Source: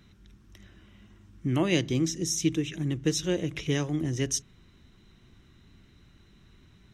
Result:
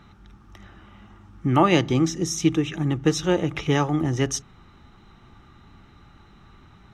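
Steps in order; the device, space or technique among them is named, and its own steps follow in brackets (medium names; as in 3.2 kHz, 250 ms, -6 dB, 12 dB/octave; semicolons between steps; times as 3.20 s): inside a helmet (treble shelf 5.3 kHz -8.5 dB; small resonant body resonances 850/1200 Hz, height 16 dB, ringing for 25 ms); trim +5.5 dB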